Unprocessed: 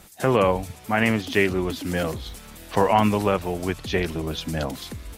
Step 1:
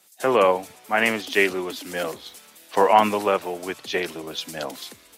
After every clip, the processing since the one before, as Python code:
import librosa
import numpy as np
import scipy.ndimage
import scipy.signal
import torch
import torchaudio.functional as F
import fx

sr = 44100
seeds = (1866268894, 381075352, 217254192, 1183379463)

y = scipy.signal.sosfilt(scipy.signal.butter(2, 350.0, 'highpass', fs=sr, output='sos'), x)
y = fx.band_widen(y, sr, depth_pct=40)
y = F.gain(torch.from_numpy(y), 2.0).numpy()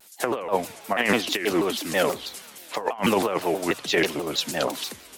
y = fx.over_compress(x, sr, threshold_db=-23.0, ratio=-0.5)
y = fx.vibrato_shape(y, sr, shape='saw_down', rate_hz=6.2, depth_cents=250.0)
y = F.gain(torch.from_numpy(y), 1.5).numpy()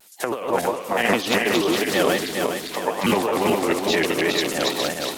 y = fx.reverse_delay_fb(x, sr, ms=206, feedback_pct=66, wet_db=-1)